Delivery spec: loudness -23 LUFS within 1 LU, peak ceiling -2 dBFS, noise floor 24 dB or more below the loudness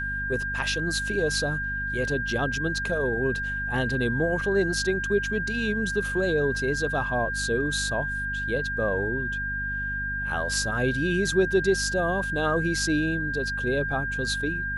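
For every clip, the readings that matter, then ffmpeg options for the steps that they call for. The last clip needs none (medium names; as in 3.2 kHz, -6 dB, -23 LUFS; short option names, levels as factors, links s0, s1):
hum 50 Hz; highest harmonic 250 Hz; hum level -33 dBFS; steady tone 1.6 kHz; tone level -28 dBFS; loudness -26.0 LUFS; peak level -11.0 dBFS; loudness target -23.0 LUFS
-> -af "bandreject=f=50:t=h:w=4,bandreject=f=100:t=h:w=4,bandreject=f=150:t=h:w=4,bandreject=f=200:t=h:w=4,bandreject=f=250:t=h:w=4"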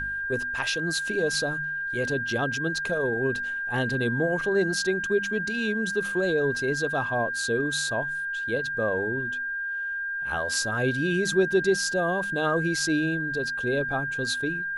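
hum not found; steady tone 1.6 kHz; tone level -28 dBFS
-> -af "bandreject=f=1600:w=30"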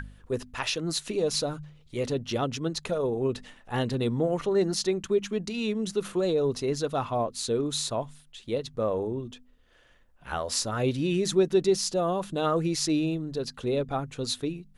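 steady tone not found; loudness -28.5 LUFS; peak level -13.0 dBFS; loudness target -23.0 LUFS
-> -af "volume=1.88"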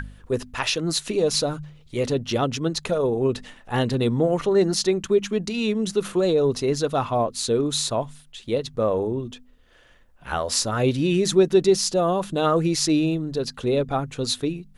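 loudness -23.0 LUFS; peak level -7.5 dBFS; noise floor -53 dBFS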